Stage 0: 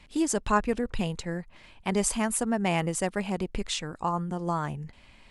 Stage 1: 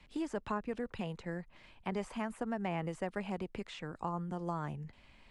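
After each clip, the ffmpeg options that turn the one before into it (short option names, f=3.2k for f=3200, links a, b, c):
-filter_complex "[0:a]acrossover=split=2500[a][b];[b]acompressor=threshold=-46dB:ratio=4:attack=1:release=60[c];[a][c]amix=inputs=2:normalize=0,highshelf=f=7.6k:g=-10,acrossover=split=99|520[d][e][f];[d]acompressor=threshold=-51dB:ratio=4[g];[e]acompressor=threshold=-32dB:ratio=4[h];[f]acompressor=threshold=-31dB:ratio=4[i];[g][h][i]amix=inputs=3:normalize=0,volume=-5.5dB"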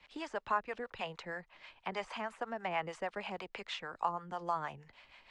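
-filter_complex "[0:a]acrossover=split=550 6700:gain=0.141 1 0.0891[a][b][c];[a][b][c]amix=inputs=3:normalize=0,acrossover=split=490[d][e];[d]aeval=exprs='val(0)*(1-0.7/2+0.7/2*cos(2*PI*6.3*n/s))':c=same[f];[e]aeval=exprs='val(0)*(1-0.7/2-0.7/2*cos(2*PI*6.3*n/s))':c=same[g];[f][g]amix=inputs=2:normalize=0,volume=8.5dB"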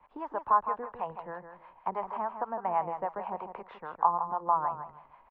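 -af "lowpass=f=990:t=q:w=3.7,aecho=1:1:159|318|477:0.355|0.0745|0.0156"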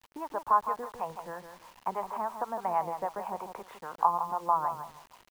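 -af "acrusher=bits=8:mix=0:aa=0.000001"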